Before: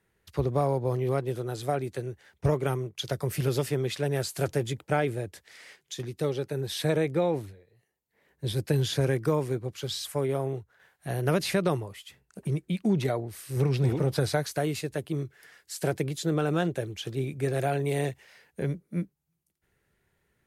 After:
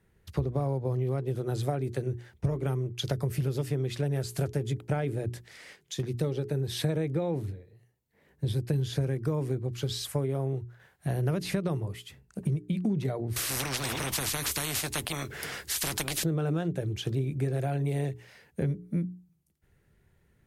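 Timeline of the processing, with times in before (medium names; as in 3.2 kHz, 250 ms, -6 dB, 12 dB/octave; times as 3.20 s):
13.36–16.24 s: spectrum-flattening compressor 10:1
whole clip: bass shelf 300 Hz +12 dB; hum notches 60/120/180/240/300/360/420 Hz; compression, threshold -26 dBFS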